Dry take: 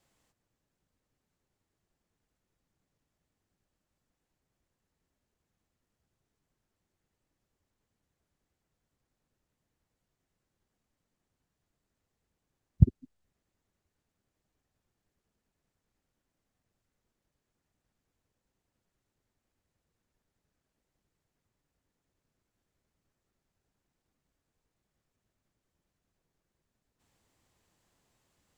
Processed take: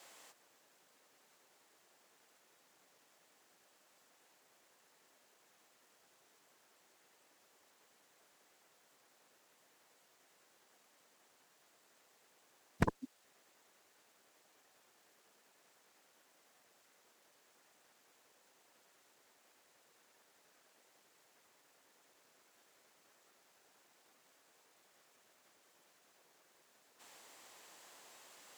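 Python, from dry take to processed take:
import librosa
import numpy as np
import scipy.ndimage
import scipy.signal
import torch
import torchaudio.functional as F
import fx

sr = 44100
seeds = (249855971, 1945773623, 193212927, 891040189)

y = scipy.signal.sosfilt(scipy.signal.butter(2, 520.0, 'highpass', fs=sr, output='sos'), x)
y = fx.cheby_harmonics(y, sr, harmonics=(7,), levels_db=(-6,), full_scale_db=-28.5)
y = y * librosa.db_to_amplitude(9.5)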